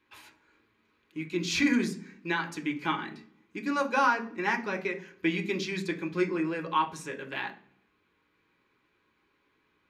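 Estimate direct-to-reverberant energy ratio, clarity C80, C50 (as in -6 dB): 2.0 dB, 19.0 dB, 14.5 dB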